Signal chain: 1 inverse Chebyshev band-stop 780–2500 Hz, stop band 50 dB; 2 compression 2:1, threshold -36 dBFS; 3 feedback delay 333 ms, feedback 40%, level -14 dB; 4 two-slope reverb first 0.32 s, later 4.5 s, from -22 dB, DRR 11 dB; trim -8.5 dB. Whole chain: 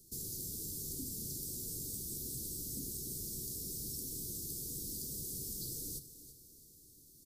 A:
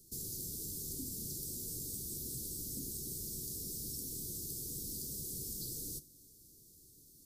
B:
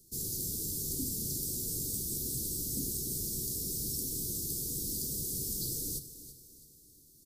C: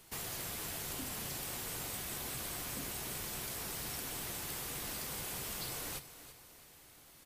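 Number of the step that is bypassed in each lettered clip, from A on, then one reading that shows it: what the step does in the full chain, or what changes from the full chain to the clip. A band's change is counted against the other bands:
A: 3, echo-to-direct -9.0 dB to -11.0 dB; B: 2, mean gain reduction 5.0 dB; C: 1, 500 Hz band +6.0 dB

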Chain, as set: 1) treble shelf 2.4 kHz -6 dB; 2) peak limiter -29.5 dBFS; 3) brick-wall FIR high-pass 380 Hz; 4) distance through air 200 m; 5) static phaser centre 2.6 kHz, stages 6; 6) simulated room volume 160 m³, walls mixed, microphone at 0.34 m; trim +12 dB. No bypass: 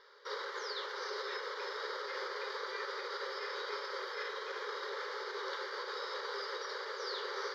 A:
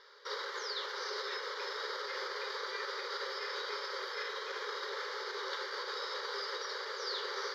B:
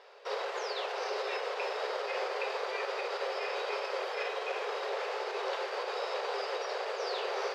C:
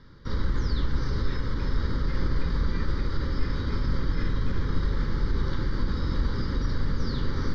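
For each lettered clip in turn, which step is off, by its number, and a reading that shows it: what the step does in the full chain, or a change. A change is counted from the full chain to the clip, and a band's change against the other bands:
1, 4 kHz band +3.5 dB; 5, 500 Hz band +5.0 dB; 3, crest factor change -3.0 dB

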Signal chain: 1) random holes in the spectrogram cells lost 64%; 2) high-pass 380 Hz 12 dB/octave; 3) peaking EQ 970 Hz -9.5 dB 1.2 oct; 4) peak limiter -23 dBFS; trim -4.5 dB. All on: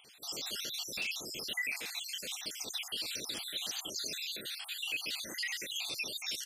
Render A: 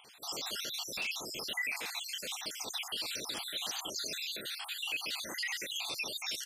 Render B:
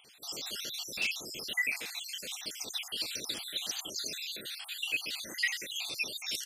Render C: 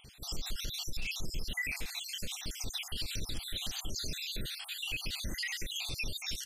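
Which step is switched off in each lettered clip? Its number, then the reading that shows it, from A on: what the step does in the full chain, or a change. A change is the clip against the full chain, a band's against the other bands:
3, 1 kHz band +7.0 dB; 4, crest factor change +8.0 dB; 2, 125 Hz band +17.5 dB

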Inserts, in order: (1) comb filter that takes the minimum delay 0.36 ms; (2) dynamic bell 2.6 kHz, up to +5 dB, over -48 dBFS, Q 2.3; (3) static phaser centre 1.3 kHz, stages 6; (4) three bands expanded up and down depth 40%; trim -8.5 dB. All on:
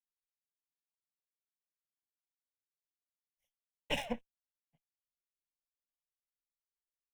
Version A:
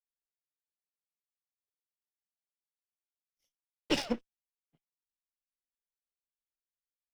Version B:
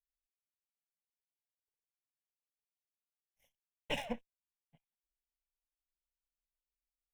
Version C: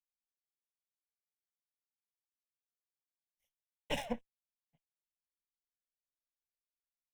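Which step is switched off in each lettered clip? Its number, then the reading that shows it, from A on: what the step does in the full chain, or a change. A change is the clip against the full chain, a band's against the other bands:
3, loudness change +5.0 LU; 4, 8 kHz band -2.0 dB; 2, 2 kHz band -3.0 dB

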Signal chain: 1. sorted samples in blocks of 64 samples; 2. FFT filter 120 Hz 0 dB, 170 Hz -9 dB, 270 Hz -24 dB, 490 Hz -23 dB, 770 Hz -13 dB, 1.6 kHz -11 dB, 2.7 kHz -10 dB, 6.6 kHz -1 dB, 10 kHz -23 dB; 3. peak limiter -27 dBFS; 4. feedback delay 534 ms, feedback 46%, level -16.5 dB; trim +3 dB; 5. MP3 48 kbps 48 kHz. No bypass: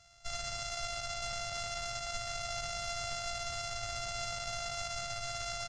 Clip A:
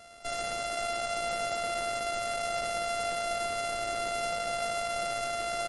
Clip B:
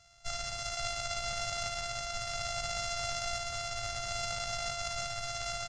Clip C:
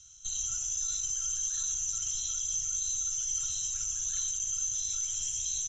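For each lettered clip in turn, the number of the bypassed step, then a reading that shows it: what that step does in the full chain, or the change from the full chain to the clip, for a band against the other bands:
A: 2, crest factor change -4.5 dB; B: 3, mean gain reduction 2.0 dB; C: 1, crest factor change -3.5 dB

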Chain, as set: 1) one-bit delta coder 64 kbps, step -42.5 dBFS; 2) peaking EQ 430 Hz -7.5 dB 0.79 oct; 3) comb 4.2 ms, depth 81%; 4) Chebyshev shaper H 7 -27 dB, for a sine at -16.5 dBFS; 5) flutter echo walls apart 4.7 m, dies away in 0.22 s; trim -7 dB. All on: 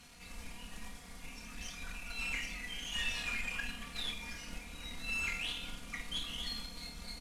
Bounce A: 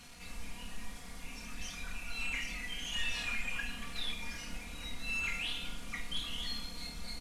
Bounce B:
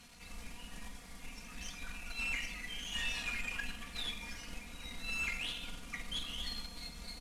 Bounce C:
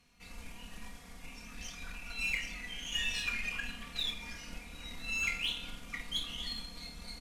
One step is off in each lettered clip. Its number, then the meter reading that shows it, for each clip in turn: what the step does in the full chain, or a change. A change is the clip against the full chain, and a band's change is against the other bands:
4, momentary loudness spread change -1 LU; 5, echo-to-direct -6.5 dB to none; 1, 4 kHz band +3.0 dB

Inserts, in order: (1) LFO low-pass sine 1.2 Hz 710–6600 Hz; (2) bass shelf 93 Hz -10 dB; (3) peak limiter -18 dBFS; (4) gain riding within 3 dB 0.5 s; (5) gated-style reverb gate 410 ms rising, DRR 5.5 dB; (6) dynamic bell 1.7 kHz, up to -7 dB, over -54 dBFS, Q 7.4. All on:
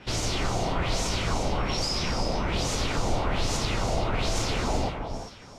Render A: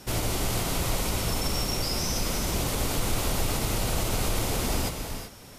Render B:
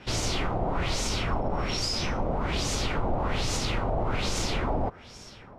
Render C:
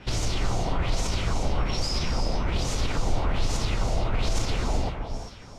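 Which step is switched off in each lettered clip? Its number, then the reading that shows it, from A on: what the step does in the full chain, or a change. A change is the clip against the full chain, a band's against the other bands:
1, 8 kHz band +5.0 dB; 5, crest factor change -2.5 dB; 2, 125 Hz band +4.5 dB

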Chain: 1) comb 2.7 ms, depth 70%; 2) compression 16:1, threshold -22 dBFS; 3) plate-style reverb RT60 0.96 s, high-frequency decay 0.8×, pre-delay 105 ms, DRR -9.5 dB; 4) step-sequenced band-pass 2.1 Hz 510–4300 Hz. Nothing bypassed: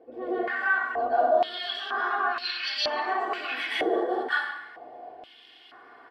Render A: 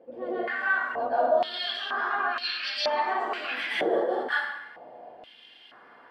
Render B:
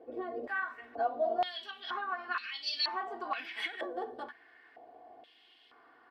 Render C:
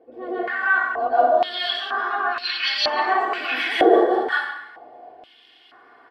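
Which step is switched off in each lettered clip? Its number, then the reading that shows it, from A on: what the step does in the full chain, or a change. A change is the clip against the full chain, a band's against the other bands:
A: 1, 250 Hz band -1.5 dB; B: 3, 4 kHz band +4.0 dB; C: 2, mean gain reduction 3.5 dB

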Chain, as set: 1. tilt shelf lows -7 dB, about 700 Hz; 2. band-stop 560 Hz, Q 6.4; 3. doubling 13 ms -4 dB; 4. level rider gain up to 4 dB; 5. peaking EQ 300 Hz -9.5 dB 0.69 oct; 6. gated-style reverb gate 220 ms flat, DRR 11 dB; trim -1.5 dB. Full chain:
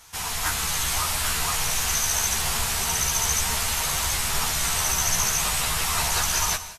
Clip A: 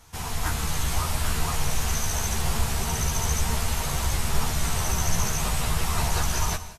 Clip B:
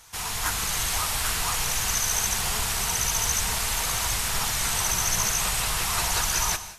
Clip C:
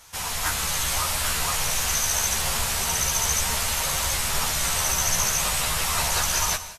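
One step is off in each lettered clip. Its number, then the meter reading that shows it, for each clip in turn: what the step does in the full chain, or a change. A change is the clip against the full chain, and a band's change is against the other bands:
1, 125 Hz band +10.5 dB; 3, loudness change -1.5 LU; 2, 500 Hz band +2.0 dB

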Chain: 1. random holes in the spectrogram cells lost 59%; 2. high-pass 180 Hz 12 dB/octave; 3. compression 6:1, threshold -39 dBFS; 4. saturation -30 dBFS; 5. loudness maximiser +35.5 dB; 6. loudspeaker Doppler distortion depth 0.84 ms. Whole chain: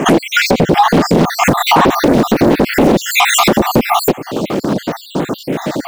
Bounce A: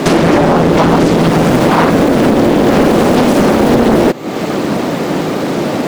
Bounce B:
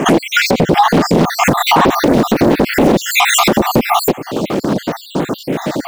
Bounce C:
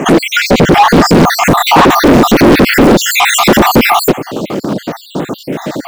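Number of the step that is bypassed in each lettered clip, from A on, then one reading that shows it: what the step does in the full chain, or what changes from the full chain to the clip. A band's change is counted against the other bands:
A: 1, 8 kHz band -7.0 dB; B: 4, distortion -23 dB; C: 3, mean gain reduction 8.0 dB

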